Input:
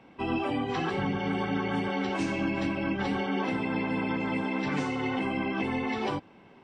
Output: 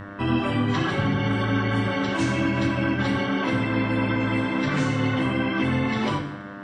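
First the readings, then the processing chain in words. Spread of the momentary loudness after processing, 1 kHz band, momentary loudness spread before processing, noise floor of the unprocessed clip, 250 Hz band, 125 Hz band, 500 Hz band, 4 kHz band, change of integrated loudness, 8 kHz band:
1 LU, +3.5 dB, 1 LU, -55 dBFS, +6.0 dB, +11.5 dB, +4.0 dB, +7.0 dB, +6.0 dB, n/a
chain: buzz 100 Hz, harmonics 19, -44 dBFS -3 dB/oct; thirty-one-band EQ 125 Hz +8 dB, 400 Hz -11 dB, 800 Hz -10 dB, 2500 Hz -5 dB, 5000 Hz -3 dB; two-slope reverb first 0.76 s, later 2.4 s, DRR 4 dB; gain +7 dB

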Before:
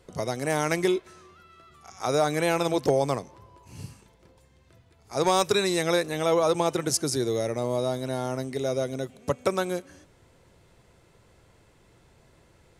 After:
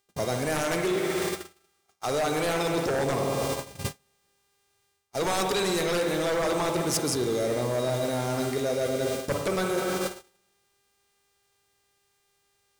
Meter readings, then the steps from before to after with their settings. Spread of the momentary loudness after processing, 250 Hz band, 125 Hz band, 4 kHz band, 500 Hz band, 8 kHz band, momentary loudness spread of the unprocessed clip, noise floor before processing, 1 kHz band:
7 LU, -0.5 dB, 0.0 dB, 0.0 dB, -1.0 dB, +0.5 dB, 10 LU, -60 dBFS, -1.5 dB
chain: high shelf 5900 Hz +3 dB; in parallel at -10 dB: requantised 6-bit, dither triangular; on the sum: spring tank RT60 2 s, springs 48/58 ms, chirp 50 ms, DRR 4 dB; sine folder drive 9 dB, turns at -6 dBFS; buzz 400 Hz, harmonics 25, -30 dBFS -2 dB/oct; gate -20 dBFS, range -43 dB; reverse; compressor 6:1, threshold -26 dBFS, peak gain reduction 16.5 dB; reverse

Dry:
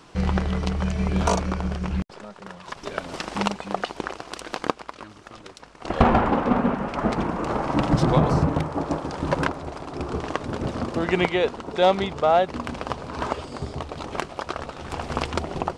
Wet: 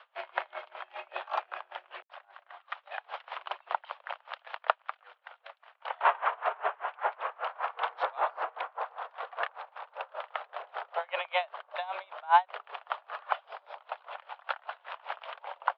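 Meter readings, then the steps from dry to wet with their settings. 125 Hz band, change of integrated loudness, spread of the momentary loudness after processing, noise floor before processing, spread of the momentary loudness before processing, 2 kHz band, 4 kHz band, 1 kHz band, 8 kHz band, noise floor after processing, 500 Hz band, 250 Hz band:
under -40 dB, -9.5 dB, 15 LU, -47 dBFS, 15 LU, -4.5 dB, -9.5 dB, -5.0 dB, under -35 dB, -69 dBFS, -14.0 dB, under -40 dB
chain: mistuned SSB +180 Hz 460–3300 Hz; dB-linear tremolo 5.1 Hz, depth 27 dB

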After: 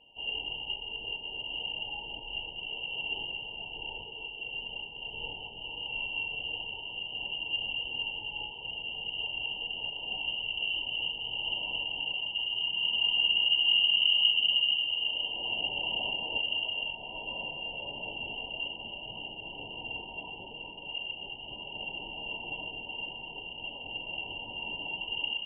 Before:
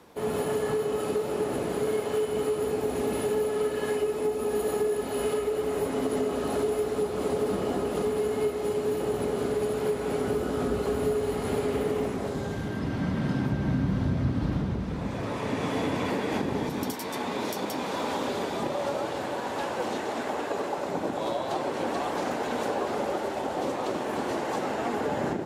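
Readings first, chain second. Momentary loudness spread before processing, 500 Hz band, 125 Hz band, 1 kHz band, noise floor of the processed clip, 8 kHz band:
4 LU, -23.5 dB, -21.0 dB, -14.5 dB, -44 dBFS, under -40 dB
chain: FFT band-reject 260–2000 Hz; inverted band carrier 3000 Hz; two-slope reverb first 0.3 s, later 2.5 s, from -18 dB, DRR 7.5 dB

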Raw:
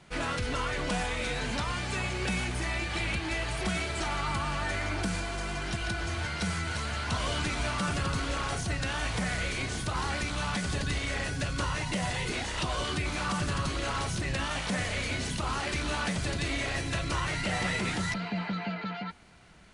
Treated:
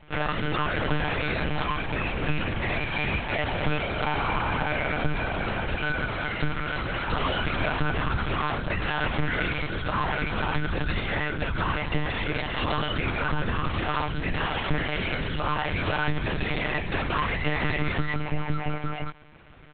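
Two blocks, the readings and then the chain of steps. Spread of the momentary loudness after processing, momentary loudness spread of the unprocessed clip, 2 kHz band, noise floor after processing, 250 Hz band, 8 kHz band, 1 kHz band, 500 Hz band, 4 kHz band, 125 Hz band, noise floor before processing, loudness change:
3 LU, 2 LU, +4.5 dB, -32 dBFS, +3.5 dB, under -40 dB, +5.5 dB, +5.5 dB, +1.0 dB, +3.5 dB, -37 dBFS, +3.5 dB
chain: air absorption 150 m; comb 4.7 ms, depth 88%; monotone LPC vocoder at 8 kHz 150 Hz; gain +3.5 dB

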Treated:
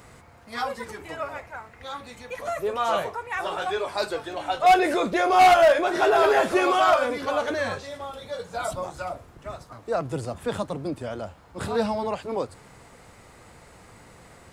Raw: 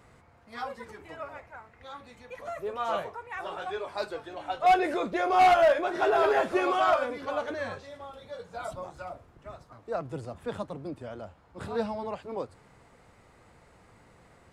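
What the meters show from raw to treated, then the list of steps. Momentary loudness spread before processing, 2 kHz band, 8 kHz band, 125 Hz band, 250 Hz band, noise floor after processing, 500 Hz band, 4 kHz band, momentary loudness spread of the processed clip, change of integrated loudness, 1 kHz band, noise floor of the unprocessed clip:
22 LU, +6.0 dB, n/a, +7.0 dB, +6.0 dB, -51 dBFS, +5.0 dB, +8.0 dB, 19 LU, +4.5 dB, +5.0 dB, -59 dBFS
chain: in parallel at -2.5 dB: limiter -26.5 dBFS, peak gain reduction 11 dB; on the sum: high shelf 4600 Hz +8.5 dB; gain +2.5 dB

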